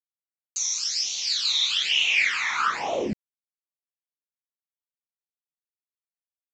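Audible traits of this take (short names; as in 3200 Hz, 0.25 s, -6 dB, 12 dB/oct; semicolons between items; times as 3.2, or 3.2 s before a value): a quantiser's noise floor 8-bit, dither none; phasing stages 12, 1.1 Hz, lowest notch 490–1600 Hz; µ-law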